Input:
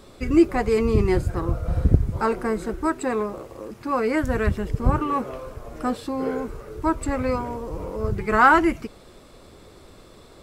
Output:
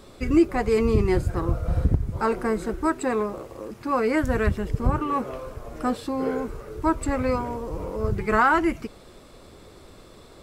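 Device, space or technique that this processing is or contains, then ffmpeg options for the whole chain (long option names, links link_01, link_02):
clipper into limiter: -af "asoftclip=type=hard:threshold=-4dB,alimiter=limit=-9.5dB:level=0:latency=1:release=423"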